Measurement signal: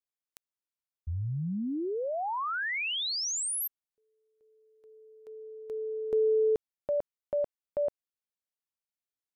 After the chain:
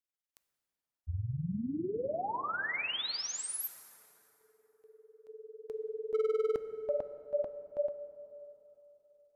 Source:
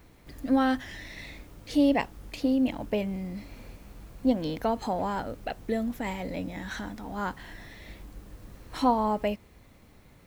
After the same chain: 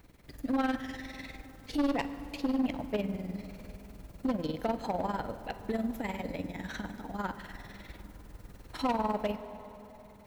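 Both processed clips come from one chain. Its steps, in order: notch 1100 Hz, Q 20; dynamic EQ 7800 Hz, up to -4 dB, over -50 dBFS, Q 0.92; tremolo 20 Hz, depth 76%; hard clip -24.5 dBFS; plate-style reverb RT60 3.4 s, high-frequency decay 0.55×, DRR 10.5 dB

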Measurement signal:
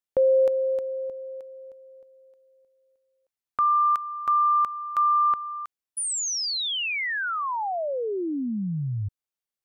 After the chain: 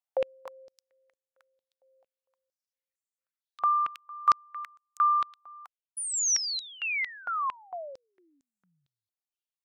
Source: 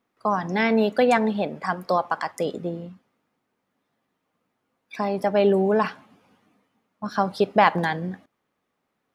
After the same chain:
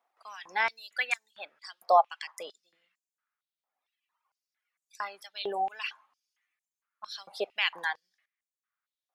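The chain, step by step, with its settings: reverb removal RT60 1.8 s; stepped high-pass 4.4 Hz 750–7100 Hz; gain -5.5 dB

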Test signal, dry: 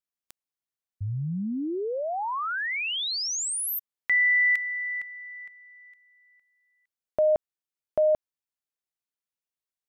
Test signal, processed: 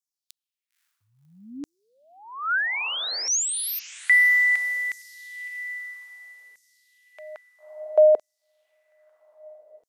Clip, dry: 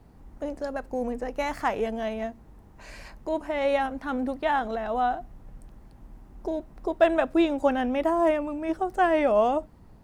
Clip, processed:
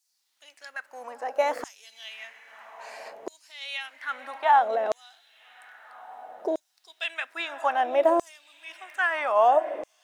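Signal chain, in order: diffused feedback echo 0.544 s, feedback 53%, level -16 dB; LFO high-pass saw down 0.61 Hz 420–6500 Hz

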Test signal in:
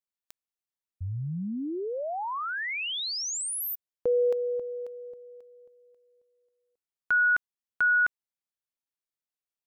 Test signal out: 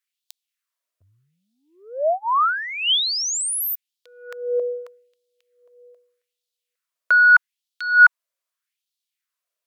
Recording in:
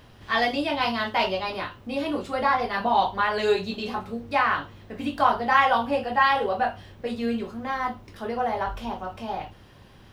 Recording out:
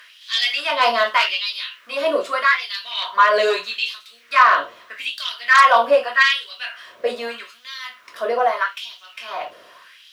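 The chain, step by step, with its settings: Butterworth band-stop 820 Hz, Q 3.6; added harmonics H 5 -8 dB, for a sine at -6 dBFS; LFO high-pass sine 0.81 Hz 590–3800 Hz; gain -1.5 dB

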